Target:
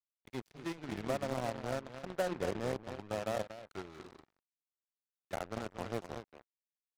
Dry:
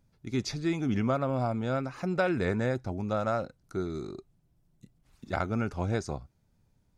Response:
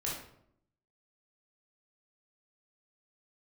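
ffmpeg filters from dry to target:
-filter_complex "[0:a]asettb=1/sr,asplit=3[a][b][c];[a]atrim=end=4.184[d];[b]atrim=start=4.18:end=5.3,asetpts=PTS-STARTPTS,afade=t=in:d=0.004:c=qsin,afade=t=out:st=1.116:d=0.004:c=qsin,afreqshift=-66[e];[c]atrim=start=5.296[f];[d][e]acrossfade=d=0.004:c1=hsin:c2=qsin[g];[g][f]acrossfade=d=0.004:c1=qsin:c2=hsin,acrossover=split=100|710[h][i][j];[j]acompressor=threshold=-48dB:ratio=16[k];[h][i][k]amix=inputs=3:normalize=0,acrossover=split=470 3500:gain=0.251 1 0.112[l][m][n];[l][m][n]amix=inputs=3:normalize=0,crystalizer=i=2.5:c=0,asettb=1/sr,asplit=3[o][p][q];[o]atrim=end=1.404[r];[p]atrim=start=1.4:end=3.19,asetpts=PTS-STARTPTS,afade=t=in:d=0.004:c=qsin,afade=t=out:st=1.786:d=0.004:c=qsin,highshelf=f=3.2k:g=-12[s];[q]atrim=start=3.186[t];[r][s]acrossfade=d=0.004:c1=hsin:c2=qsin[u];[u][t]acrossfade=d=0.004:c1=qsin:c2=hsin,asplit=2[v][w];[w]adelay=236,lowpass=f=3.9k:p=1,volume=-5.5dB,asplit=2[x][y];[y]adelay=236,lowpass=f=3.9k:p=1,volume=0.19,asplit=2[z][aa];[aa]adelay=236,lowpass=f=3.9k:p=1,volume=0.19[ab];[x][z][ab]amix=inputs=3:normalize=0[ac];[v][ac]amix=inputs=2:normalize=0,acrusher=bits=6:mix=0:aa=0.5,aeval=exprs='0.0794*(cos(1*acos(clip(val(0)/0.0794,-1,1)))-cos(1*PI/2))+0.01*(cos(7*acos(clip(val(0)/0.0794,-1,1)))-cos(7*PI/2))':c=same"

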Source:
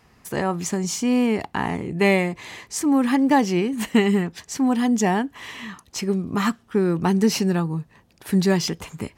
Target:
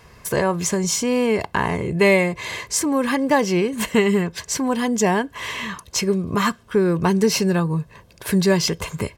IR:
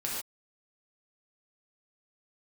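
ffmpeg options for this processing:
-filter_complex "[0:a]asplit=2[a][b];[b]acompressor=threshold=-29dB:ratio=6,volume=3dB[c];[a][c]amix=inputs=2:normalize=0,aecho=1:1:1.9:0.52"

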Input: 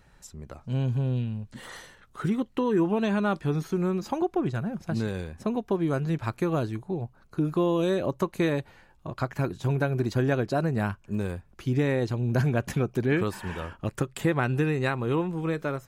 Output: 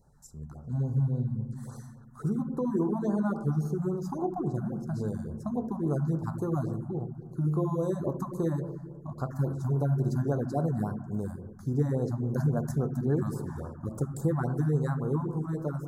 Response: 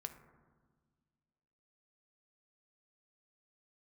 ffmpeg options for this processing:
-filter_complex "[0:a]asuperstop=centerf=2700:order=4:qfactor=0.57[a];[1:a]atrim=start_sample=2205[b];[a][b]afir=irnorm=-1:irlink=0,afftfilt=real='re*(1-between(b*sr/1024,390*pow(2600/390,0.5+0.5*sin(2*PI*3.6*pts/sr))/1.41,390*pow(2600/390,0.5+0.5*sin(2*PI*3.6*pts/sr))*1.41))':imag='im*(1-between(b*sr/1024,390*pow(2600/390,0.5+0.5*sin(2*PI*3.6*pts/sr))/1.41,390*pow(2600/390,0.5+0.5*sin(2*PI*3.6*pts/sr))*1.41))':win_size=1024:overlap=0.75"

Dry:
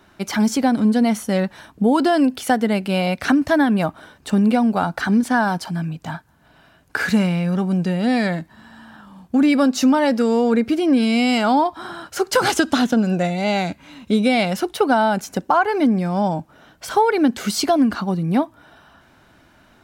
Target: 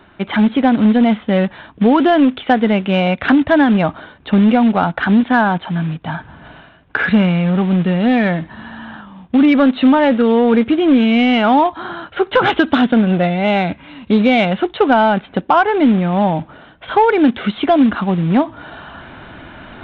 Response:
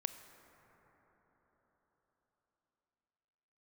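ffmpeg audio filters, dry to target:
-af "areverse,acompressor=mode=upward:threshold=-29dB:ratio=2.5,areverse,acrusher=bits=4:mode=log:mix=0:aa=0.000001,aresample=8000,aresample=44100,acontrast=38"

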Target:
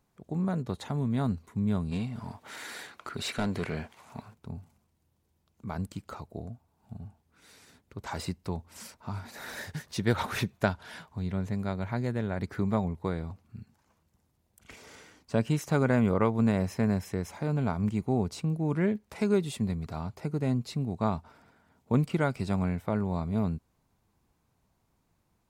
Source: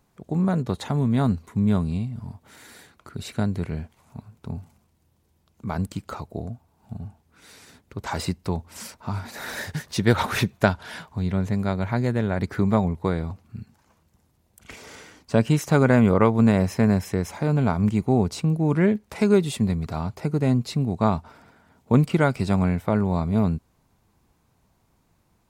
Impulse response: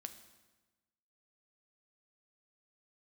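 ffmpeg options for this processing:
-filter_complex "[0:a]asplit=3[a][b][c];[a]afade=t=out:st=1.91:d=0.02[d];[b]asplit=2[e][f];[f]highpass=f=720:p=1,volume=22dB,asoftclip=type=tanh:threshold=-12.5dB[g];[e][g]amix=inputs=2:normalize=0,lowpass=f=4.4k:p=1,volume=-6dB,afade=t=in:st=1.91:d=0.02,afade=t=out:st=4.33:d=0.02[h];[c]afade=t=in:st=4.33:d=0.02[i];[d][h][i]amix=inputs=3:normalize=0,volume=-7.5dB"

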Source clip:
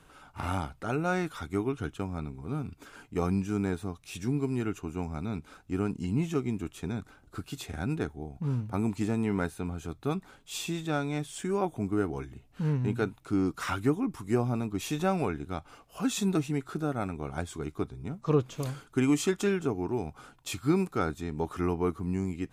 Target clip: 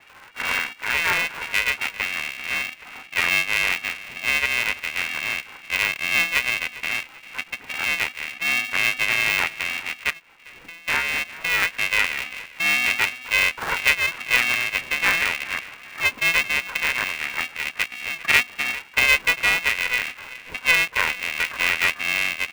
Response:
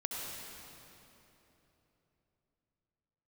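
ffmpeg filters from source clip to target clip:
-filter_complex "[0:a]acontrast=87,asplit=2[a][b];[b]asplit=4[c][d][e][f];[c]adelay=397,afreqshift=-34,volume=-17dB[g];[d]adelay=794,afreqshift=-68,volume=-24.5dB[h];[e]adelay=1191,afreqshift=-102,volume=-32.1dB[i];[f]adelay=1588,afreqshift=-136,volume=-39.6dB[j];[g][h][i][j]amix=inputs=4:normalize=0[k];[a][k]amix=inputs=2:normalize=0,lowpass=f=2.2k:t=q:w=0.5098,lowpass=f=2.2k:t=q:w=0.6013,lowpass=f=2.2k:t=q:w=0.9,lowpass=f=2.2k:t=q:w=2.563,afreqshift=-2600,asettb=1/sr,asplit=3[l][m][n];[l]atrim=end=10.104[o];[m]atrim=start=10.1:end=10.88,asetpts=PTS-STARTPTS,afade=t=in:d=0.004:c=qsin,afade=t=out:st=0.776:d=0.004:c=qsin,acompressor=threshold=-41dB:ratio=5[p];[n]atrim=start=10.876[q];[o][p]acrossfade=d=0.004:c1=hsin:c2=qsin[r];[r][q]acrossfade=d=0.004:c1=qsin:c2=hsin,aeval=exprs='val(0)*sgn(sin(2*PI*250*n/s))':c=same"

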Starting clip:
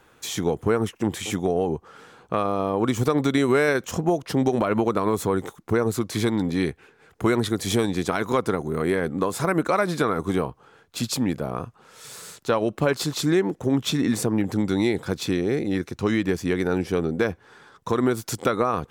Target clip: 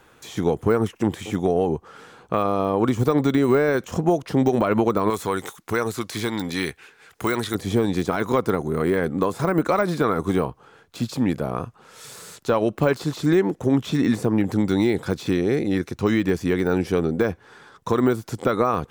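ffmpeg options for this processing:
-filter_complex "[0:a]deesser=0.9,asettb=1/sr,asplit=3[a][b][c];[a]atrim=end=5.104[d];[b]atrim=start=5.1:end=7.55,asetpts=PTS-STARTPTS,afade=t=in:d=0.004:c=qsin,afade=t=out:st=2.446:d=0.004:c=qsin,tiltshelf=f=970:g=-7.5[e];[c]atrim=start=7.546[f];[d][e]acrossfade=d=0.004:c1=hsin:c2=qsin[g];[g][f]acrossfade=d=0.004:c1=qsin:c2=hsin,volume=2.5dB"

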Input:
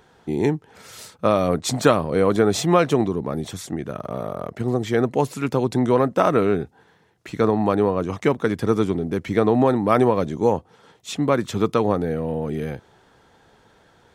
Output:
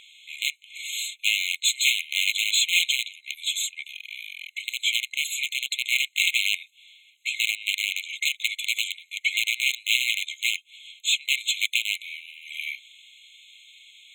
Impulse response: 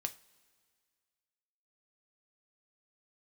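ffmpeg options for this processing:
-filter_complex "[0:a]aeval=exprs='(mod(3.98*val(0)+1,2)-1)/3.98':c=same,asplit=2[a][b];[b]highpass=f=720:p=1,volume=20dB,asoftclip=type=tanh:threshold=-11.5dB[c];[a][c]amix=inputs=2:normalize=0,lowpass=f=4.2k:p=1,volume=-6dB,afftfilt=real='re*eq(mod(floor(b*sr/1024/2100),2),1)':imag='im*eq(mod(floor(b*sr/1024/2100),2),1)':win_size=1024:overlap=0.75,volume=4dB"

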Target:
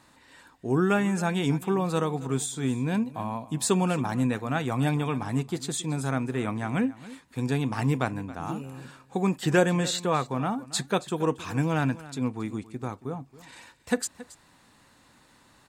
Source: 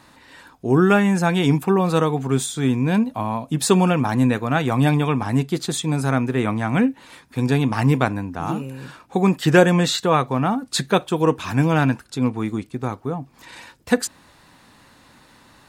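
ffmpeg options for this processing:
-filter_complex "[0:a]equalizer=f=7.7k:w=2.6:g=5.5,asplit=2[a][b];[b]aecho=0:1:275:0.126[c];[a][c]amix=inputs=2:normalize=0,volume=-8dB"

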